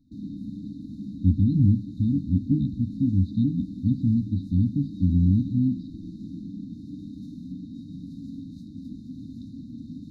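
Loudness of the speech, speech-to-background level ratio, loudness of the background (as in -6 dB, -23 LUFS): -24.0 LUFS, 13.5 dB, -37.5 LUFS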